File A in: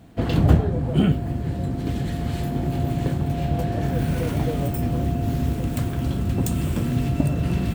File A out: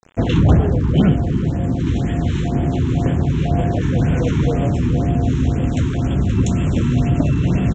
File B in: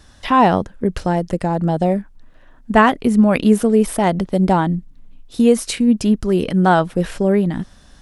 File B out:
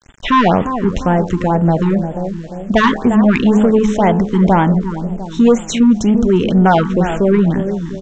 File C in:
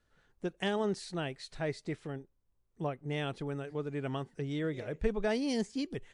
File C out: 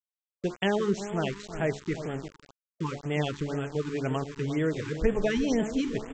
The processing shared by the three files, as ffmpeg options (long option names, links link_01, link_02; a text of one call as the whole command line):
ffmpeg -i in.wav -filter_complex "[0:a]acontrast=38,asuperstop=centerf=4700:order=4:qfactor=3.1,bandreject=frequency=71.43:width_type=h:width=4,bandreject=frequency=142.86:width_type=h:width=4,bandreject=frequency=214.29:width_type=h:width=4,bandreject=frequency=285.72:width_type=h:width=4,bandreject=frequency=357.15:width_type=h:width=4,bandreject=frequency=428.58:width_type=h:width=4,bandreject=frequency=500.01:width_type=h:width=4,bandreject=frequency=571.44:width_type=h:width=4,bandreject=frequency=642.87:width_type=h:width=4,bandreject=frequency=714.3:width_type=h:width=4,bandreject=frequency=785.73:width_type=h:width=4,bandreject=frequency=857.16:width_type=h:width=4,bandreject=frequency=928.59:width_type=h:width=4,bandreject=frequency=1000.02:width_type=h:width=4,bandreject=frequency=1071.45:width_type=h:width=4,bandreject=frequency=1142.88:width_type=h:width=4,bandreject=frequency=1214.31:width_type=h:width=4,bandreject=frequency=1285.74:width_type=h:width=4,bandreject=frequency=1357.17:width_type=h:width=4,bandreject=frequency=1428.6:width_type=h:width=4,bandreject=frequency=1500.03:width_type=h:width=4,bandreject=frequency=1571.46:width_type=h:width=4,bandreject=frequency=1642.89:width_type=h:width=4,bandreject=frequency=1714.32:width_type=h:width=4,bandreject=frequency=1785.75:width_type=h:width=4,bandreject=frequency=1857.18:width_type=h:width=4,asplit=2[link_01][link_02];[link_02]adelay=350,lowpass=frequency=1200:poles=1,volume=-10dB,asplit=2[link_03][link_04];[link_04]adelay=350,lowpass=frequency=1200:poles=1,volume=0.51,asplit=2[link_05][link_06];[link_06]adelay=350,lowpass=frequency=1200:poles=1,volume=0.51,asplit=2[link_07][link_08];[link_08]adelay=350,lowpass=frequency=1200:poles=1,volume=0.51,asplit=2[link_09][link_10];[link_10]adelay=350,lowpass=frequency=1200:poles=1,volume=0.51,asplit=2[link_11][link_12];[link_12]adelay=350,lowpass=frequency=1200:poles=1,volume=0.51[link_13];[link_03][link_05][link_07][link_09][link_11][link_13]amix=inputs=6:normalize=0[link_14];[link_01][link_14]amix=inputs=2:normalize=0,acontrast=23,agate=range=-33dB:threshold=-34dB:ratio=3:detection=peak,aresample=16000,aeval=exprs='val(0)*gte(abs(val(0)),0.0188)':channel_layout=same,aresample=44100,afftfilt=real='re*(1-between(b*sr/1024,590*pow(5100/590,0.5+0.5*sin(2*PI*2*pts/sr))/1.41,590*pow(5100/590,0.5+0.5*sin(2*PI*2*pts/sr))*1.41))':imag='im*(1-between(b*sr/1024,590*pow(5100/590,0.5+0.5*sin(2*PI*2*pts/sr))/1.41,590*pow(5100/590,0.5+0.5*sin(2*PI*2*pts/sr))*1.41))':win_size=1024:overlap=0.75,volume=-3.5dB" out.wav